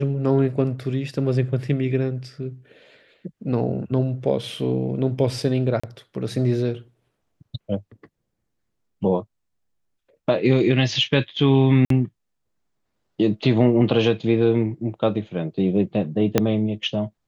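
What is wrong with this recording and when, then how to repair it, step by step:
5.8–5.83 gap 35 ms
11.85–11.9 gap 53 ms
16.38 pop -3 dBFS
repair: de-click; interpolate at 5.8, 35 ms; interpolate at 11.85, 53 ms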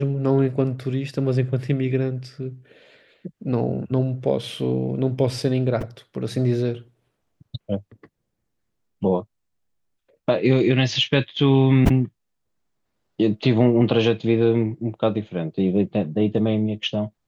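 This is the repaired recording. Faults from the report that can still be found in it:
16.38 pop

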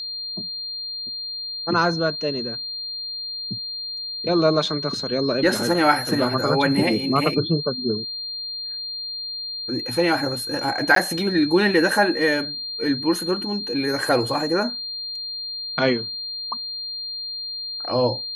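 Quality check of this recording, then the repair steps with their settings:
tone 4200 Hz -28 dBFS
10.95–10.96 gap 13 ms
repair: notch 4200 Hz, Q 30; interpolate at 10.95, 13 ms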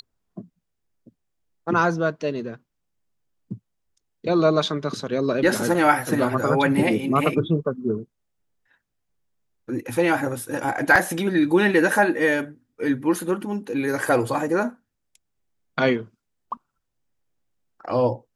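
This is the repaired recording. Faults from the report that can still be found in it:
none

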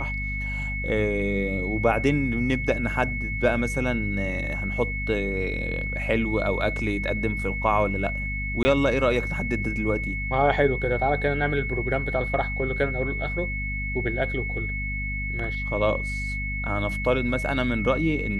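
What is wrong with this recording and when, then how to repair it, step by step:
hum 50 Hz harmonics 5 -31 dBFS
tone 2200 Hz -30 dBFS
8.63–8.65 gap 20 ms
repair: de-hum 50 Hz, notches 5; notch 2200 Hz, Q 30; interpolate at 8.63, 20 ms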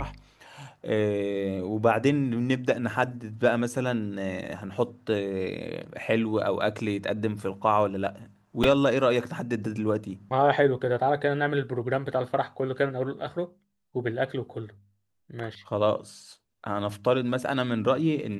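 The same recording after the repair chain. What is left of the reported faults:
none

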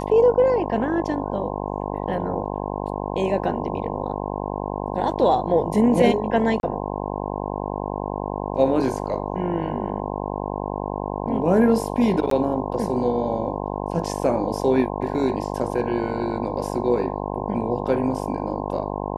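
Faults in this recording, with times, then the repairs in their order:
buzz 50 Hz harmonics 21 -28 dBFS
6.6–6.63 gap 31 ms
12.3–12.31 gap 13 ms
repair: de-hum 50 Hz, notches 21; interpolate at 6.6, 31 ms; interpolate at 12.3, 13 ms

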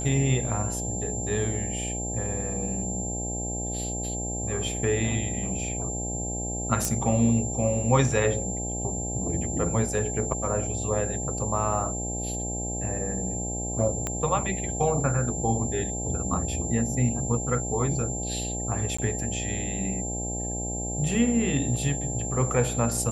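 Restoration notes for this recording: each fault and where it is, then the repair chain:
buzz 60 Hz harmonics 14 -33 dBFS
tone 7300 Hz -32 dBFS
6.85 pop
14.07 pop -14 dBFS
18.97–18.98 gap 15 ms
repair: de-click; notch 7300 Hz, Q 30; de-hum 60 Hz, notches 14; interpolate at 18.97, 15 ms

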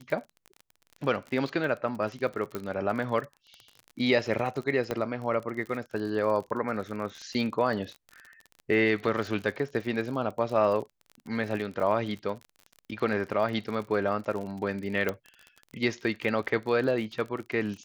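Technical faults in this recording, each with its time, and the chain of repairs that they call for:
crackle 38/s -35 dBFS
2.55 pop -19 dBFS
4.91 pop -16 dBFS
15.09 pop -15 dBFS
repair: de-click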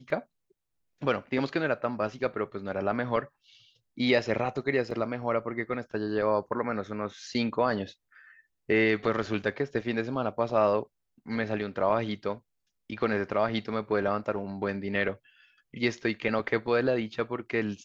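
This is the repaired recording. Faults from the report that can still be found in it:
2.55 pop
4.91 pop

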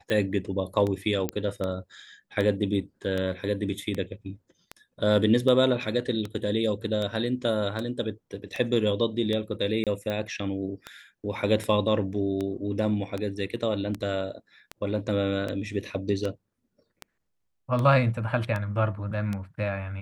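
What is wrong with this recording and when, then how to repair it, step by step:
tick 78 rpm -18 dBFS
1.29 pop -13 dBFS
9.84–9.87 gap 27 ms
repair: de-click; interpolate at 9.84, 27 ms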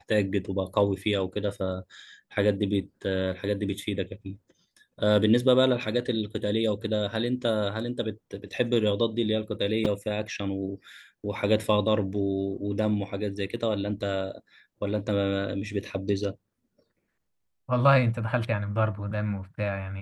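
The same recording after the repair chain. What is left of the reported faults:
none

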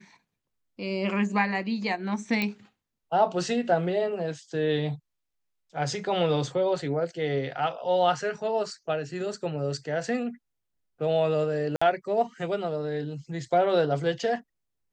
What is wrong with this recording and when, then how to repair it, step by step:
2.42 pop -14 dBFS
11.76–11.81 gap 55 ms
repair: de-click; interpolate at 11.76, 55 ms

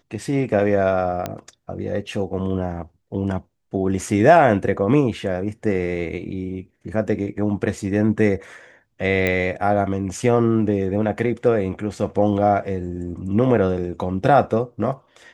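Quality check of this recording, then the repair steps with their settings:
1.26 pop -11 dBFS
9.27 pop -8 dBFS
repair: de-click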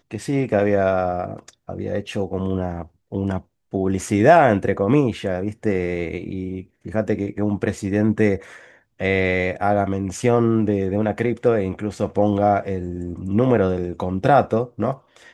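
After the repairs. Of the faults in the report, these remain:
none

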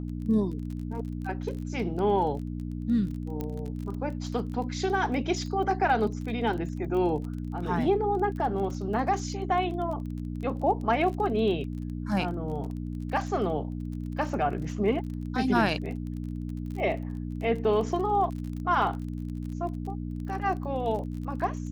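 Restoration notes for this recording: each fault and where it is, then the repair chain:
crackle 28/s -36 dBFS
hum 60 Hz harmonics 5 -34 dBFS
3.41 pop -20 dBFS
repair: de-click; de-hum 60 Hz, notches 5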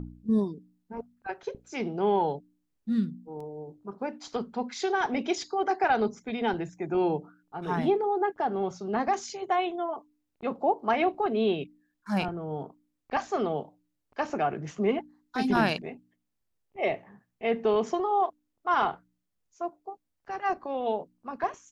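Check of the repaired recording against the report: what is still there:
3.41 pop

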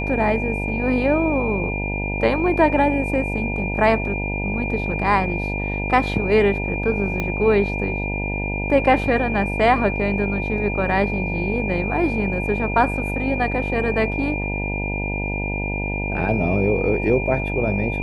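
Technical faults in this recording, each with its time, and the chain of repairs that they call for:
buzz 50 Hz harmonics 19 -26 dBFS
tone 2400 Hz -27 dBFS
7.2 pop -11 dBFS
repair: de-click; notch 2400 Hz, Q 30; de-hum 50 Hz, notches 19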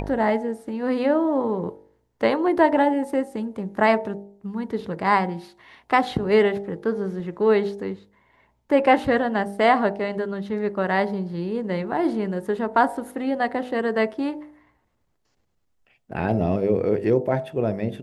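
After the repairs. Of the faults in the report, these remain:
7.2 pop

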